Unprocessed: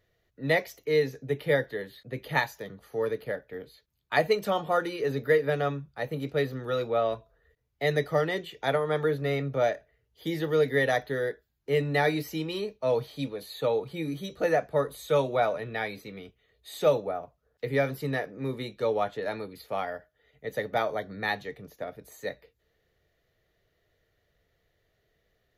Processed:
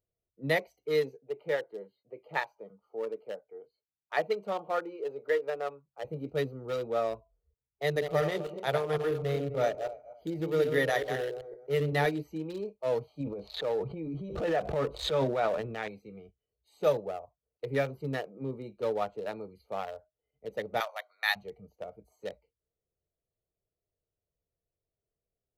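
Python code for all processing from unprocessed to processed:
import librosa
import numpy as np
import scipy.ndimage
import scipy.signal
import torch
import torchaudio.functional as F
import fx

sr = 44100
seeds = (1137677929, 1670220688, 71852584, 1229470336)

y = fx.chain(x, sr, fx.highpass(hz=360.0, slope=6),
    fx.peak_eq(hz=9700.0, db=-13.5, octaves=2.1), at=(1.17, 6.05))
y = fx.chain(y, sr, fx.reverse_delay_fb(ms=128, feedback_pct=46, wet_db=-6),
    fx.echo_single(ms=144, db=-20.5), at=(7.83, 12.06))
y = fx.chain(y, sr, fx.lowpass(hz=3300.0, slope=12),
    fx.transient(attack_db=-4, sustain_db=8),
    fx.pre_swell(db_per_s=76.0), at=(13.2, 15.88))
y = fx.chain(y, sr, fx.highpass(hz=650.0, slope=24),
    fx.tilt_shelf(db=-8.0, hz=890.0), at=(20.8, 21.36))
y = fx.wiener(y, sr, points=25)
y = fx.noise_reduce_blind(y, sr, reduce_db=14)
y = fx.high_shelf(y, sr, hz=6400.0, db=8.0)
y = F.gain(torch.from_numpy(y), -3.0).numpy()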